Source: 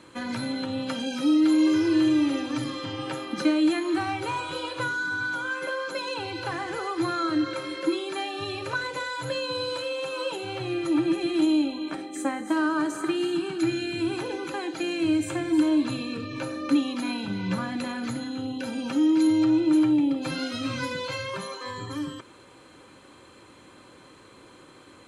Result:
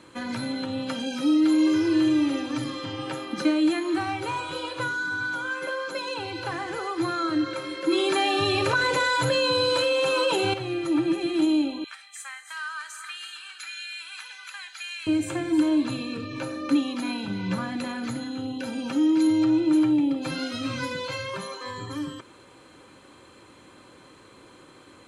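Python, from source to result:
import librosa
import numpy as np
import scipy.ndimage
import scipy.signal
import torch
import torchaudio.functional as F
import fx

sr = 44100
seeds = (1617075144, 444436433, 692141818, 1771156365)

y = fx.env_flatten(x, sr, amount_pct=70, at=(7.88, 10.54))
y = fx.highpass(y, sr, hz=1400.0, slope=24, at=(11.84, 15.07))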